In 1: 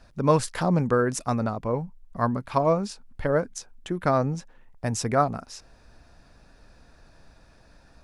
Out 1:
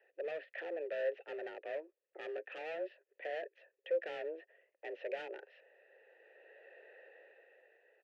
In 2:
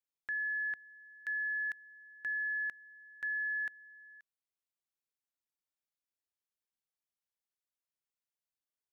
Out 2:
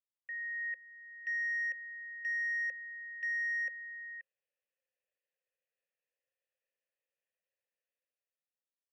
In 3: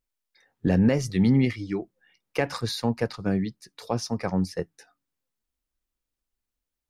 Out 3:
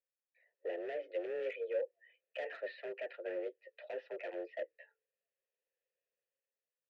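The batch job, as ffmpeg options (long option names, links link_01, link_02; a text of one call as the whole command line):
ffmpeg -i in.wav -filter_complex "[0:a]asplit=2[link_01][link_02];[link_02]alimiter=limit=-16dB:level=0:latency=1,volume=3dB[link_03];[link_01][link_03]amix=inputs=2:normalize=0,dynaudnorm=framelen=260:gausssize=9:maxgain=16dB,aresample=16000,asoftclip=type=tanh:threshold=-10.5dB,aresample=44100,highpass=frequency=230:width_type=q:width=0.5412,highpass=frequency=230:width_type=q:width=1.307,lowpass=frequency=3100:width_type=q:width=0.5176,lowpass=frequency=3100:width_type=q:width=0.7071,lowpass=frequency=3100:width_type=q:width=1.932,afreqshift=160,asoftclip=type=hard:threshold=-20dB,asplit=3[link_04][link_05][link_06];[link_04]bandpass=frequency=530:width_type=q:width=8,volume=0dB[link_07];[link_05]bandpass=frequency=1840:width_type=q:width=8,volume=-6dB[link_08];[link_06]bandpass=frequency=2480:width_type=q:width=8,volume=-9dB[link_09];[link_07][link_08][link_09]amix=inputs=3:normalize=0,volume=-7dB" out.wav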